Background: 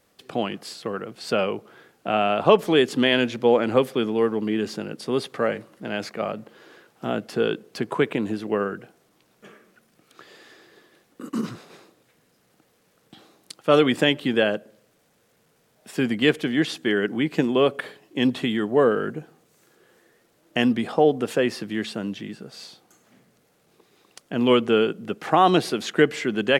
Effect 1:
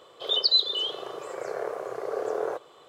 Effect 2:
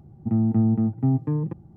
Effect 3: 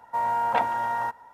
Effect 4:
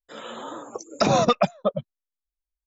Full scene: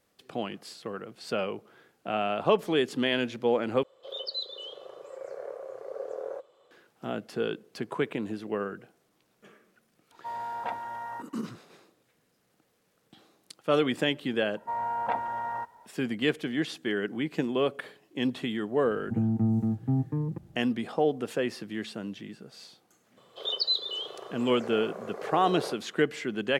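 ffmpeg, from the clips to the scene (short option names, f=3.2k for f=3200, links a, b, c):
-filter_complex "[1:a]asplit=2[a][b];[3:a]asplit=2[c][d];[0:a]volume=-7.5dB[e];[a]equalizer=f=540:t=o:w=0.29:g=13.5[f];[d]highshelf=f=3.2k:g=-11.5[g];[e]asplit=2[h][i];[h]atrim=end=3.834[j];[f]atrim=end=2.88,asetpts=PTS-STARTPTS,volume=-13.5dB[k];[i]atrim=start=6.706[l];[c]atrim=end=1.33,asetpts=PTS-STARTPTS,volume=-10.5dB,afade=t=in:d=0.004:c=hsin,afade=t=out:st=1.326:d=0.004:c=hsin,adelay=10110[m];[g]atrim=end=1.33,asetpts=PTS-STARTPTS,volume=-5dB,afade=t=in:d=0.004:c=hsin,afade=t=out:st=1.326:d=0.004:c=hsin,adelay=14540[n];[2:a]atrim=end=1.76,asetpts=PTS-STARTPTS,volume=-5.5dB,afade=t=in:d=0.004:c=hsin,afade=t=out:st=1.756:d=0.004:c=hsin,adelay=18850[o];[b]atrim=end=2.88,asetpts=PTS-STARTPTS,volume=-6dB,afade=t=in:d=0.02,afade=t=out:st=2.86:d=0.02,adelay=23160[p];[j][k]acrossfade=d=0.004:c1=hsin:c2=hsin[q];[q][l]acrossfade=d=0.004:c1=hsin:c2=hsin[r];[r][m][n][o][p]amix=inputs=5:normalize=0"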